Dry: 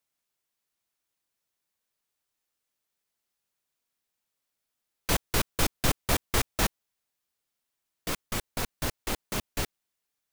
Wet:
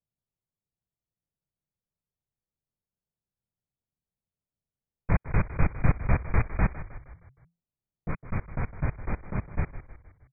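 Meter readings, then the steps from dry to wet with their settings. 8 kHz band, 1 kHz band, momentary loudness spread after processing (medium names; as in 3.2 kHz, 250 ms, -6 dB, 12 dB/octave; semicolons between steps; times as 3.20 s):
under -40 dB, -2.0 dB, 16 LU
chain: brick-wall FIR low-pass 2.5 kHz; resonant low shelf 210 Hz +8.5 dB, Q 1.5; level-controlled noise filter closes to 550 Hz, open at -17 dBFS; frequency-shifting echo 156 ms, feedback 50%, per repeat -34 Hz, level -13 dB; trim -2 dB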